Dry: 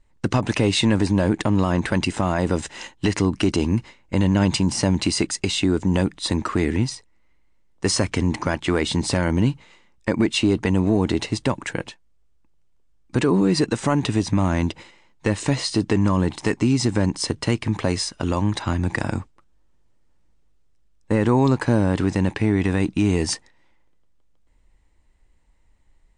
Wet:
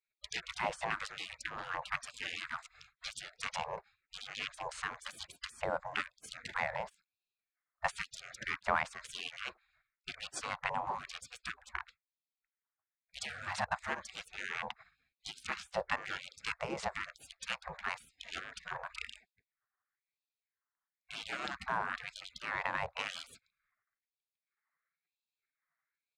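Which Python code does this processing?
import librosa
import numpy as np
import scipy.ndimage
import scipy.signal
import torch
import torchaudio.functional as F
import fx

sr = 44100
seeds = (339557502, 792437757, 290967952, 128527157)

y = fx.wiener(x, sr, points=15)
y = fx.wah_lfo(y, sr, hz=1.0, low_hz=340.0, high_hz=1400.0, q=2.1)
y = fx.spec_gate(y, sr, threshold_db=-30, keep='weak')
y = y * 10.0 ** (18.0 / 20.0)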